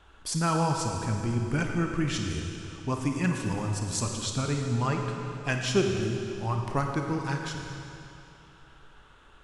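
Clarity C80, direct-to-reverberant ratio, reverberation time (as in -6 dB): 3.5 dB, 2.0 dB, 2.8 s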